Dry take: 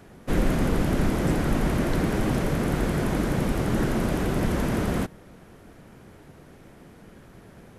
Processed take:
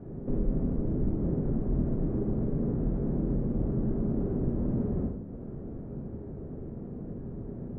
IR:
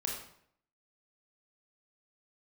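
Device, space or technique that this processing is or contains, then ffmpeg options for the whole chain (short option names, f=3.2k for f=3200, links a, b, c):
television next door: -filter_complex "[0:a]bandreject=f=50:t=h:w=6,bandreject=f=100:t=h:w=6,acompressor=threshold=-39dB:ratio=4,lowpass=400[a];[1:a]atrim=start_sample=2205[b];[a][b]afir=irnorm=-1:irlink=0,volume=8dB"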